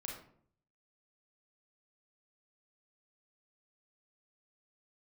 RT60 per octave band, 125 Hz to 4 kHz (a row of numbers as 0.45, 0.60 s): 0.85, 0.70, 0.60, 0.55, 0.45, 0.35 s